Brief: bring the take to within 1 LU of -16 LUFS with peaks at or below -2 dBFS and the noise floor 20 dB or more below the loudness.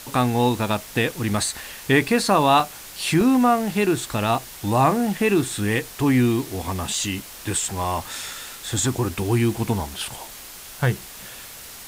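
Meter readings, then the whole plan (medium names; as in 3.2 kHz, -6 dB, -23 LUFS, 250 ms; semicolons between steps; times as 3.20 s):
dropouts 6; longest dropout 2.4 ms; noise floor -40 dBFS; noise floor target -42 dBFS; loudness -22.0 LUFS; peak level -5.0 dBFS; loudness target -16.0 LUFS
-> interpolate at 1.34/2.60/3.21/4.35/6.94/7.84 s, 2.4 ms; noise reduction 6 dB, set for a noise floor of -40 dBFS; trim +6 dB; peak limiter -2 dBFS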